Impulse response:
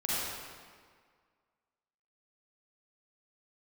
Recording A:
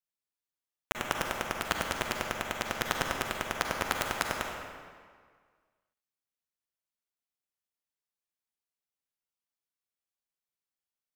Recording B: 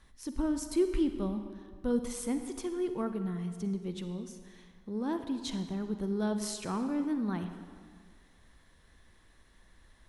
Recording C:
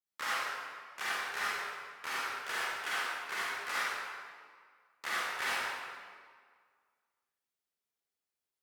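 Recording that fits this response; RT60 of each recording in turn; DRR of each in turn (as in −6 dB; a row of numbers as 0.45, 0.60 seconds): C; 1.8, 1.8, 1.8 seconds; 1.0, 8.0, −9.0 decibels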